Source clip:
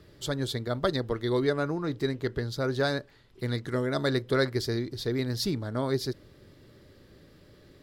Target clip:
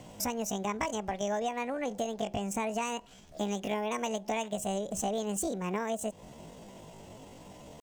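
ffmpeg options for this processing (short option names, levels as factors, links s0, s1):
-af "acompressor=threshold=0.0178:ratio=8,asetrate=74167,aresample=44100,atempo=0.594604,volume=1.88"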